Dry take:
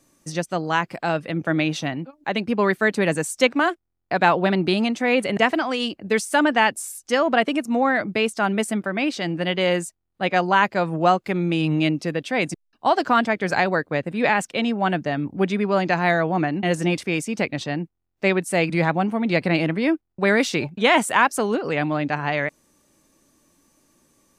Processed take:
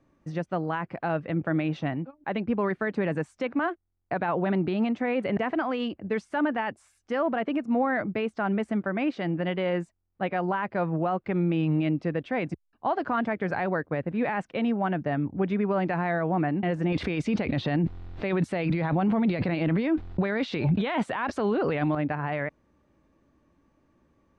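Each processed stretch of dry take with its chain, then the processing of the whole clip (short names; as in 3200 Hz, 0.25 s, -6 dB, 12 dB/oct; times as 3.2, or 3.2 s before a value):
16.92–21.95 bell 3900 Hz +9 dB 0.81 oct + fast leveller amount 100%
whole clip: bell 68 Hz +9.5 dB 1.3 oct; limiter -14.5 dBFS; LPF 1900 Hz 12 dB/oct; gain -3 dB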